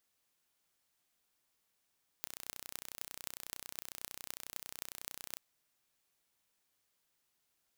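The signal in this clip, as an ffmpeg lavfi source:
ffmpeg -f lavfi -i "aevalsrc='0.266*eq(mod(n,1423),0)*(0.5+0.5*eq(mod(n,11384),0))':duration=3.15:sample_rate=44100" out.wav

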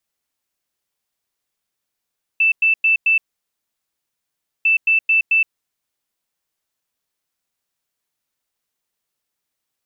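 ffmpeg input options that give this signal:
ffmpeg -f lavfi -i "aevalsrc='0.266*sin(2*PI*2650*t)*clip(min(mod(mod(t,2.25),0.22),0.12-mod(mod(t,2.25),0.22))/0.005,0,1)*lt(mod(t,2.25),0.88)':duration=4.5:sample_rate=44100" out.wav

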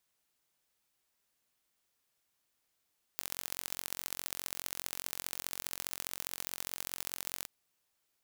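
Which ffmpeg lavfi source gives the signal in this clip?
ffmpeg -f lavfi -i "aevalsrc='0.376*eq(mod(n,984),0)*(0.5+0.5*eq(mod(n,2952),0))':duration=4.28:sample_rate=44100" out.wav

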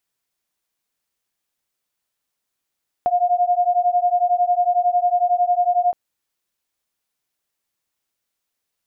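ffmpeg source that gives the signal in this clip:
ffmpeg -f lavfi -i "aevalsrc='0.126*(sin(2*PI*706*t)+sin(2*PI*717*t))':duration=2.87:sample_rate=44100" out.wav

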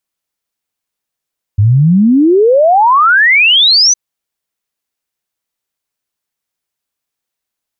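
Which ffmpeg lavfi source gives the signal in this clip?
ffmpeg -f lavfi -i "aevalsrc='0.596*clip(min(t,2.36-t)/0.01,0,1)*sin(2*PI*97*2.36/log(6200/97)*(exp(log(6200/97)*t/2.36)-1))':duration=2.36:sample_rate=44100" out.wav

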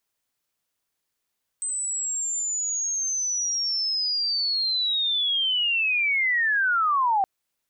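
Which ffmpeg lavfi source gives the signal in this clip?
ffmpeg -f lavfi -i "aevalsrc='pow(10,(-25.5+7*t/5.62)/20)*sin(2*PI*(8200*t-7450*t*t/(2*5.62)))':duration=5.62:sample_rate=44100" out.wav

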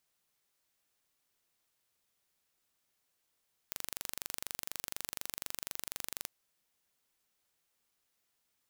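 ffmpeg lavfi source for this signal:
ffmpeg -f lavfi -i "aevalsrc='0.299*eq(mod(n,1830),0)':duration=2.54:sample_rate=44100" out.wav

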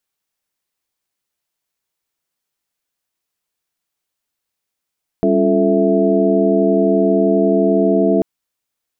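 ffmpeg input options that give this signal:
ffmpeg -f lavfi -i "aevalsrc='0.133*(sin(2*PI*196*t)+sin(2*PI*277.18*t)+sin(2*PI*349.23*t)+sin(2*PI*440*t)+sin(2*PI*659.26*t))':duration=2.99:sample_rate=44100" out.wav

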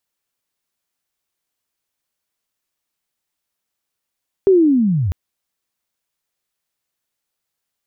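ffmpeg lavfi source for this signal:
ffmpeg -f lavfi -i "aevalsrc='pow(10,(-7-9*t/0.65)/20)*sin(2*PI*(400*t-324*t*t/(2*0.65)))':duration=0.65:sample_rate=44100" out.wav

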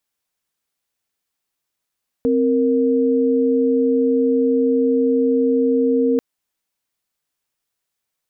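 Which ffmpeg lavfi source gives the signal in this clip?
ffmpeg -f lavfi -i "aevalsrc='0.15*(sin(2*PI*261.63*t)+sin(2*PI*466.16*t))':duration=3.94:sample_rate=44100" out.wav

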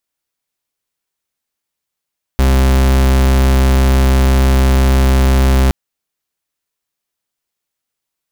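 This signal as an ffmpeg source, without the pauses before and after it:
ffmpeg -f lavfi -i "aevalsrc='0.316*(2*lt(mod(66*t,1),0.42)-1)':duration=3.32:sample_rate=44100" out.wav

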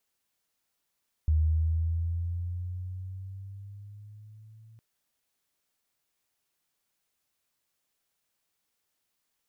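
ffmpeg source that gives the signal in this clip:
ffmpeg -f lavfi -i "aevalsrc='pow(10,(-20-30.5*t/3.51)/20)*sin(2*PI*77.3*3.51/(6.5*log(2)/12)*(exp(6.5*log(2)/12*t/3.51)-1))':duration=3.51:sample_rate=44100" out.wav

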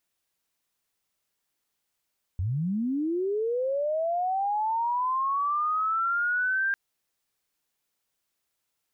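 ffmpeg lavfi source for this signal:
ffmpeg -f lavfi -i "aevalsrc='pow(10,(-25+2*t/4.35)/20)*sin(2*PI*(82*t+1518*t*t/(2*4.35)))':duration=4.35:sample_rate=44100" out.wav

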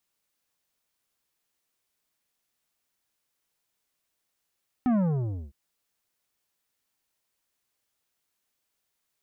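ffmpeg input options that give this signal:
ffmpeg -f lavfi -i "aevalsrc='0.0841*clip((0.66-t)/0.58,0,1)*tanh(3.35*sin(2*PI*260*0.66/log(65/260)*(exp(log(65/260)*t/0.66)-1)))/tanh(3.35)':duration=0.66:sample_rate=44100" out.wav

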